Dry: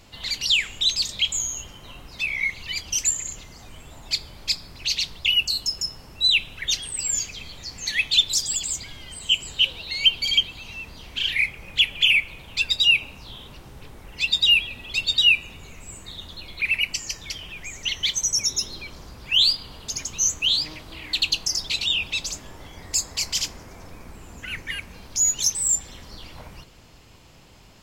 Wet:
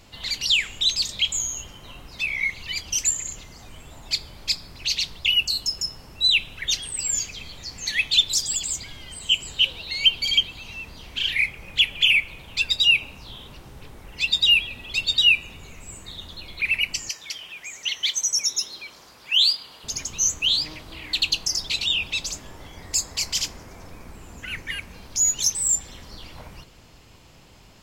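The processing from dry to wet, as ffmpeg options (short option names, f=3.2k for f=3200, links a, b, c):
-filter_complex "[0:a]asettb=1/sr,asplit=3[a][b][c];[a]atrim=end=17.094[d];[b]atrim=start=17.09:end=19.84,asetpts=PTS-STARTPTS,afade=t=in:d=0.004:c=qsin,afade=t=out:st=2.746:d=0.004:c=qsin,highpass=f=770:p=1[e];[c]atrim=start=19.836[f];[d][e]acrossfade=d=0.004:c1=hsin:c2=qsin[g];[g][f]acrossfade=d=0.004:c1=qsin:c2=hsin"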